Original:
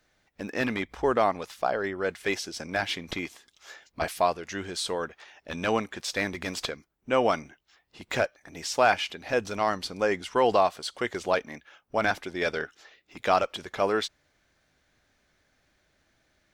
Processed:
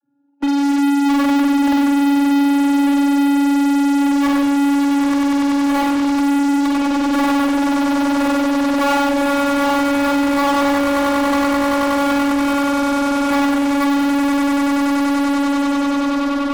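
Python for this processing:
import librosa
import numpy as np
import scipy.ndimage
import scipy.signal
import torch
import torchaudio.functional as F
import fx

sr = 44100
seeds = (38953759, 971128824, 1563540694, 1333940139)

p1 = fx.wiener(x, sr, points=41)
p2 = scipy.signal.sosfilt(scipy.signal.butter(2, 1800.0, 'lowpass', fs=sr, output='sos'), p1)
p3 = fx.peak_eq(p2, sr, hz=540.0, db=-8.0, octaves=1.6)
p4 = fx.fixed_phaser(p3, sr, hz=370.0, stages=8)
p5 = fx.echo_swell(p4, sr, ms=96, loudest=8, wet_db=-11.0)
p6 = fx.vocoder(p5, sr, bands=32, carrier='saw', carrier_hz=282.0)
p7 = fx.rev_spring(p6, sr, rt60_s=1.0, pass_ms=(46,), chirp_ms=45, drr_db=-4.0)
p8 = fx.fuzz(p7, sr, gain_db=44.0, gate_db=-47.0)
p9 = p7 + (p8 * librosa.db_to_amplitude(-4.0))
y = fx.band_squash(p9, sr, depth_pct=40)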